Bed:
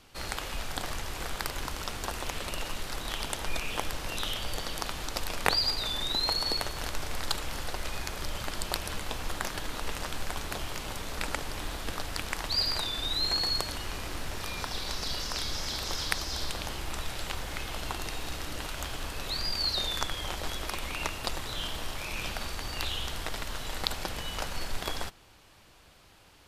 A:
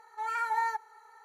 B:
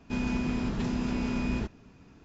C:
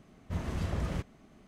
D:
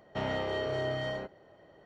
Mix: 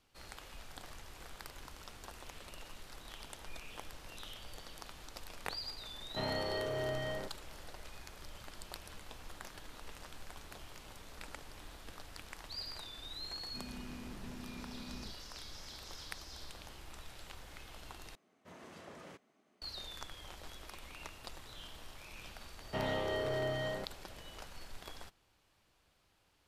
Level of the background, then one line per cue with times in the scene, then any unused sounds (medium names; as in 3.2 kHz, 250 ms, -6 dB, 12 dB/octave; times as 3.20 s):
bed -15.5 dB
6.01 s: add D -4.5 dB
13.44 s: add B -18 dB
18.15 s: replace with C -10.5 dB + high-pass 330 Hz
22.58 s: add D -3 dB
not used: A